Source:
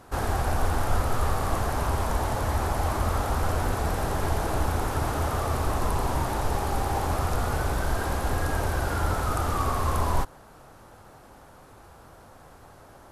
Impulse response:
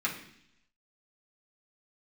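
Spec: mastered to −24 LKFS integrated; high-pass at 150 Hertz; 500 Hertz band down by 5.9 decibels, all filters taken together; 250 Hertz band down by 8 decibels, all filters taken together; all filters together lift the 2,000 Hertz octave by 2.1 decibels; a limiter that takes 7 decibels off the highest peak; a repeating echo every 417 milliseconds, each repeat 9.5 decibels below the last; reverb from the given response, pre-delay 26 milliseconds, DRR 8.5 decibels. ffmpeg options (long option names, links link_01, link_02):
-filter_complex "[0:a]highpass=150,equalizer=frequency=250:width_type=o:gain=-8,equalizer=frequency=500:width_type=o:gain=-6,equalizer=frequency=2000:width_type=o:gain=3.5,alimiter=limit=-23.5dB:level=0:latency=1,aecho=1:1:417|834|1251|1668:0.335|0.111|0.0365|0.012,asplit=2[link_01][link_02];[1:a]atrim=start_sample=2205,adelay=26[link_03];[link_02][link_03]afir=irnorm=-1:irlink=0,volume=-16dB[link_04];[link_01][link_04]amix=inputs=2:normalize=0,volume=8dB"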